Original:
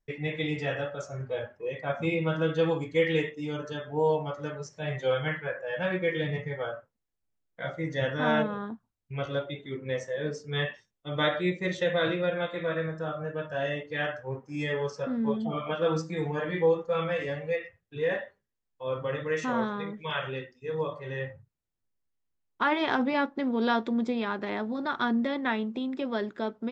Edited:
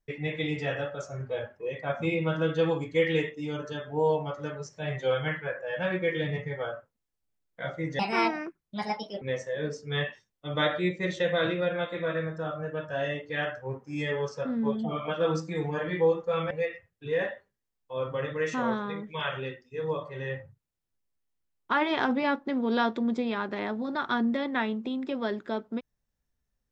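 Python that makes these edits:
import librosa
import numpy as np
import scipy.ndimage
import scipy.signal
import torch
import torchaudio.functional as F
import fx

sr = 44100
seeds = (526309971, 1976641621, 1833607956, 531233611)

y = fx.edit(x, sr, fx.speed_span(start_s=7.99, length_s=1.84, speed=1.5),
    fx.cut(start_s=17.12, length_s=0.29), tone=tone)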